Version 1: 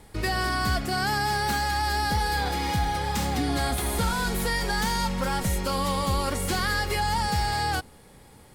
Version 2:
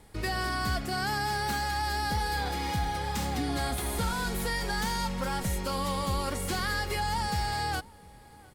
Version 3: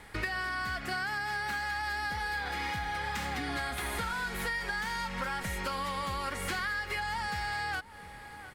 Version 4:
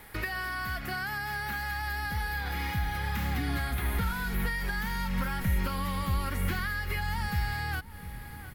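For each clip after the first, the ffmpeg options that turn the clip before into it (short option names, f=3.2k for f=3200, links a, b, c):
-filter_complex "[0:a]asplit=2[a][b];[b]adelay=699.7,volume=-23dB,highshelf=f=4k:g=-15.7[c];[a][c]amix=inputs=2:normalize=0,volume=-4.5dB"
-af "equalizer=f=1.8k:w=0.71:g=13.5,acompressor=threshold=-31dB:ratio=12"
-filter_complex "[0:a]aexciter=amount=6.6:drive=5.1:freq=11k,acrossover=split=3500[a][b];[b]acompressor=threshold=-41dB:ratio=4:attack=1:release=60[c];[a][c]amix=inputs=2:normalize=0,asubboost=boost=4.5:cutoff=240"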